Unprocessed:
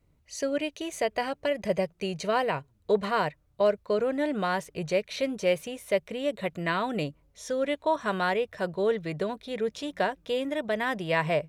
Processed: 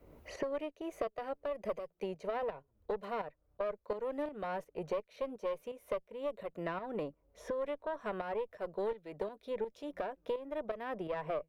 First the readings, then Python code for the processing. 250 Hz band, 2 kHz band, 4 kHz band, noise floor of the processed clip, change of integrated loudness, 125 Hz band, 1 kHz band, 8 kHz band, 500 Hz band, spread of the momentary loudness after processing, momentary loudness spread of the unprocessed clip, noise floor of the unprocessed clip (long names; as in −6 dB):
−12.0 dB, −16.0 dB, −18.5 dB, −76 dBFS, −10.5 dB, −15.0 dB, −11.0 dB, below −15 dB, −9.5 dB, 4 LU, 6 LU, −66 dBFS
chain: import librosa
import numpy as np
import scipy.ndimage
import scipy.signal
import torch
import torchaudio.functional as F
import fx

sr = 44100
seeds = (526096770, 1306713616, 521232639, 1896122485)

y = fx.graphic_eq_10(x, sr, hz=(125, 500, 2000, 4000, 8000), db=(-9, 6, -4, -8, -12))
y = fx.tube_stage(y, sr, drive_db=16.0, bias=0.75)
y = fx.low_shelf(y, sr, hz=200.0, db=-3.5)
y = fx.tremolo_shape(y, sr, shape='saw_up', hz=2.8, depth_pct=65)
y = fx.band_squash(y, sr, depth_pct=100)
y = y * 10.0 ** (-6.0 / 20.0)